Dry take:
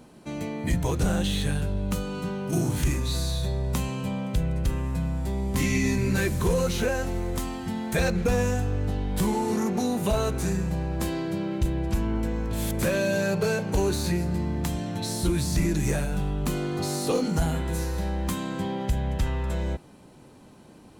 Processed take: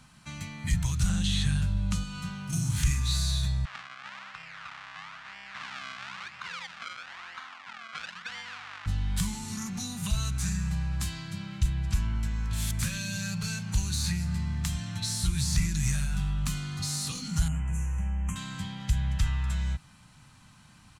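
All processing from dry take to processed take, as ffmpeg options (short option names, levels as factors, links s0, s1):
-filter_complex "[0:a]asettb=1/sr,asplit=3[s0][s1][s2];[s0]atrim=end=1.094[s3];[s1]atrim=start=1.09:end=2.04,asetpts=PTS-STARTPTS,afade=t=in:d=0.004:c=qsin,afade=t=out:st=0.946:d=0.004:c=qsin,acrossover=split=9900[s4][s5];[s5]acompressor=threshold=0.001:ratio=4:attack=1:release=60[s6];[s4][s6]amix=inputs=2:normalize=0,equalizer=f=500:t=o:w=2.9:g=7.5[s7];[s2]atrim=start=2.036[s8];[s3][s7]acrossfade=d=0.004:c1=hsin:c2=qsin[s9];[s9][s8]acrossfade=d=0.004:c1=qsin:c2=hsin,asettb=1/sr,asplit=3[s10][s11][s12];[s10]atrim=end=3.654[s13];[s11]atrim=start=3.65:end=8.86,asetpts=PTS-STARTPTS,afade=t=in:d=0.004:c=qsin,afade=t=out:st=5.206:d=0.004:c=qsin,acrusher=samples=33:mix=1:aa=0.000001:lfo=1:lforange=33:lforate=1,aeval=exprs='sgn(val(0))*max(abs(val(0))-0.00891,0)':c=same,highpass=720,lowpass=2800[s14];[s12]atrim=start=8.856[s15];[s13][s14]acrossfade=d=0.004:c1=hsin:c2=qsin[s16];[s16][s15]acrossfade=d=0.004:c1=qsin:c2=hsin,asettb=1/sr,asplit=3[s17][s18][s19];[s17]atrim=end=17.484[s20];[s18]atrim=start=17.48:end=18.36,asetpts=PTS-STARTPTS,afade=t=in:d=0.004:c=qsin,afade=t=out:st=0.876:d=0.004:c=qsin,equalizer=f=1600:t=o:w=1.1:g=-8.5,adynamicsmooth=sensitivity=2.5:basefreq=7000,asuperstop=centerf=4300:order=8:qfactor=1.2[s21];[s19]atrim=start=18.356[s22];[s20][s21]acrossfade=d=0.004:c1=hsin:c2=qsin[s23];[s23][s22]acrossfade=d=0.004:c1=qsin:c2=hsin,acrossover=split=300|3000[s24][s25][s26];[s25]acompressor=threshold=0.0126:ratio=6[s27];[s24][s27][s26]amix=inputs=3:normalize=0,firequalizer=gain_entry='entry(130,0);entry(390,-26);entry(730,-10);entry(1200,2);entry(7300,3);entry(15000,-8)':delay=0.05:min_phase=1"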